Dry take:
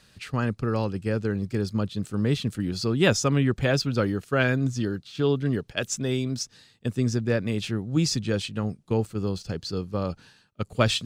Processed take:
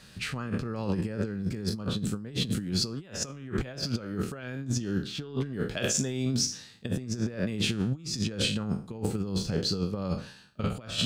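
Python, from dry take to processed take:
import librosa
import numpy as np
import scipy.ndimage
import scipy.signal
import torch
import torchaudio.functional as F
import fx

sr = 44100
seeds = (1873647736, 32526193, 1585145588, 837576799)

y = fx.spec_trails(x, sr, decay_s=0.39)
y = fx.peak_eq(y, sr, hz=190.0, db=5.0, octaves=0.59)
y = fx.over_compress(y, sr, threshold_db=-28.0, ratio=-0.5)
y = y * librosa.db_to_amplitude(-2.0)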